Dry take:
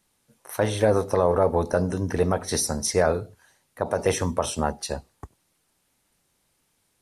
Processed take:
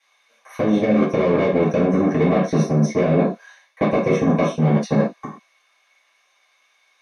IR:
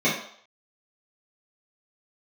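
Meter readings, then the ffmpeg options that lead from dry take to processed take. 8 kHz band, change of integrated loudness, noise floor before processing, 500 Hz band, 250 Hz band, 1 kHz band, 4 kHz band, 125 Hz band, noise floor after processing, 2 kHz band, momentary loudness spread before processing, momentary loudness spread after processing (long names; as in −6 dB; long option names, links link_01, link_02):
−11.0 dB, +5.5 dB, −71 dBFS, +4.0 dB, +12.0 dB, +2.0 dB, −4.5 dB, +8.0 dB, −63 dBFS, +4.0 dB, 12 LU, 6 LU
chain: -filter_complex "[0:a]aemphasis=mode=reproduction:type=bsi,acrossover=split=870[link_01][link_02];[link_01]acrusher=bits=2:mix=0:aa=0.5[link_03];[link_03][link_02]amix=inputs=2:normalize=0,acrossover=split=470|2400[link_04][link_05][link_06];[link_04]acompressor=threshold=-22dB:ratio=4[link_07];[link_05]acompressor=threshold=-30dB:ratio=4[link_08];[link_06]acompressor=threshold=-43dB:ratio=4[link_09];[link_07][link_08][link_09]amix=inputs=3:normalize=0[link_10];[1:a]atrim=start_sample=2205,afade=type=out:start_time=0.19:duration=0.01,atrim=end_sample=8820[link_11];[link_10][link_11]afir=irnorm=-1:irlink=0,areverse,acompressor=threshold=-16dB:ratio=10,areverse,volume=2dB"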